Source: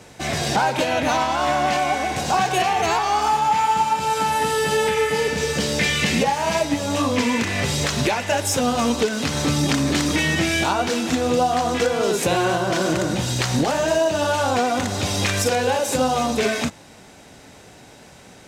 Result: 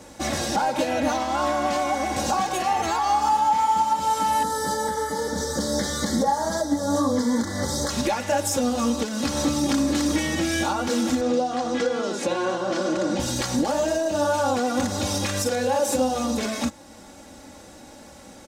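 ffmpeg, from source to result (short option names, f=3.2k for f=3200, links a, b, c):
-filter_complex "[0:a]asettb=1/sr,asplit=3[a][b][c];[a]atrim=end=4.434[d];[b]atrim=start=4.43:end=7.9,asetpts=PTS-STARTPTS,afade=t=in:d=0.004:c=qsin,afade=t=out:st=3.466:d=0.004:c=qsin,asuperstop=centerf=2600:order=4:qfactor=1.4[e];[c]atrim=start=7.896[f];[d][e]acrossfade=d=0.004:c1=hsin:c2=qsin[g];[g][f]acrossfade=d=0.004:c1=qsin:c2=hsin,asettb=1/sr,asplit=3[h][i][j];[h]atrim=end=11.214[k];[i]atrim=start=11.21:end=13.2,asetpts=PTS-STARTPTS,afade=t=in:d=0.004:c=qsin,afade=t=out:st=1.986:d=0.004:c=qsin,highpass=160,lowpass=5.9k[l];[j]atrim=start=13.196[m];[k][l]acrossfade=d=0.004:c1=hsin:c2=qsin[n];[n][m]acrossfade=d=0.004:c1=qsin:c2=hsin,equalizer=f=2.5k:t=o:w=1.2:g=-6.5,alimiter=limit=-16dB:level=0:latency=1:release=386,aecho=1:1:3.6:0.68"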